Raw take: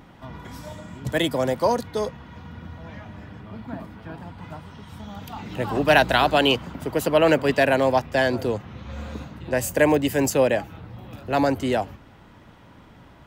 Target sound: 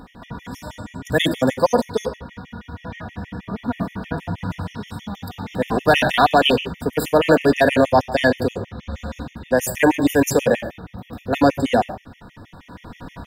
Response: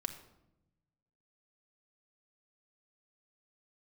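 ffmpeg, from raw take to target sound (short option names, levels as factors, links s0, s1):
-filter_complex "[1:a]atrim=start_sample=2205,afade=t=out:st=0.22:d=0.01,atrim=end_sample=10143[s0];[0:a][s0]afir=irnorm=-1:irlink=0,apsyclip=3.98,dynaudnorm=f=660:g=3:m=3.55,afftfilt=real='re*gt(sin(2*PI*6.3*pts/sr)*(1-2*mod(floor(b*sr/1024/1800),2)),0)':imag='im*gt(sin(2*PI*6.3*pts/sr)*(1-2*mod(floor(b*sr/1024/1800),2)),0)':win_size=1024:overlap=0.75,volume=0.631"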